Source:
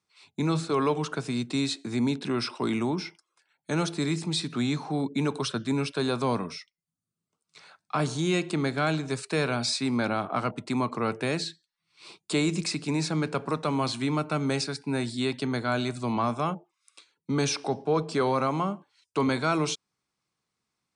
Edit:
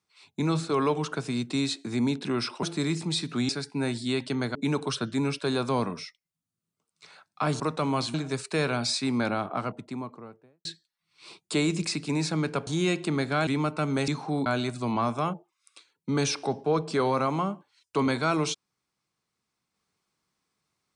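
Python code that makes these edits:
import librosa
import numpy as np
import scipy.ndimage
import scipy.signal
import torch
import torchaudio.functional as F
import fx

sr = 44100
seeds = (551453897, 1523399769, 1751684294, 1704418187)

y = fx.studio_fade_out(x, sr, start_s=9.97, length_s=1.47)
y = fx.edit(y, sr, fx.cut(start_s=2.63, length_s=1.21),
    fx.swap(start_s=4.7, length_s=0.38, other_s=14.61, other_length_s=1.06),
    fx.swap(start_s=8.13, length_s=0.8, other_s=13.46, other_length_s=0.54), tone=tone)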